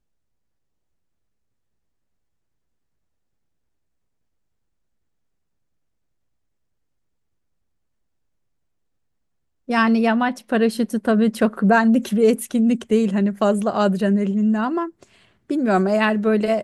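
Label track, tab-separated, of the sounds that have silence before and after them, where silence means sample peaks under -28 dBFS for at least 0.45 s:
9.690000	14.880000	sound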